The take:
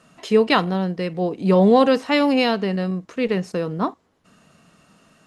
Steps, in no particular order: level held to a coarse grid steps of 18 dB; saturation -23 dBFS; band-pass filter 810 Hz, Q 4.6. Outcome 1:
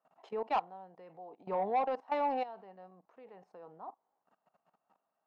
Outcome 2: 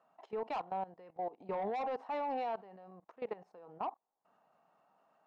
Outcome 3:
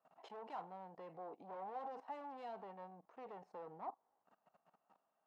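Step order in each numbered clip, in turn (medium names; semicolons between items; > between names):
level held to a coarse grid > band-pass filter > saturation; band-pass filter > saturation > level held to a coarse grid; saturation > level held to a coarse grid > band-pass filter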